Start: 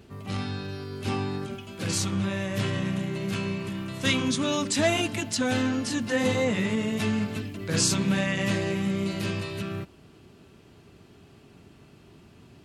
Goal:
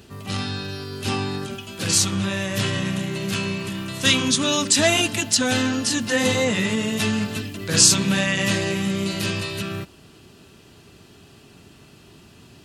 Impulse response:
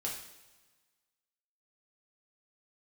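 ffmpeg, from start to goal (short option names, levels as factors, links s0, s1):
-af "highshelf=f=2100:g=9,bandreject=f=2200:w=13,volume=1.41"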